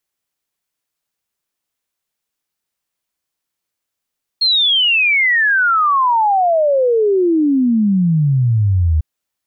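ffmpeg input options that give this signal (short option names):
-f lavfi -i "aevalsrc='0.299*clip(min(t,4.6-t)/0.01,0,1)*sin(2*PI*4300*4.6/log(75/4300)*(exp(log(75/4300)*t/4.6)-1))':d=4.6:s=44100"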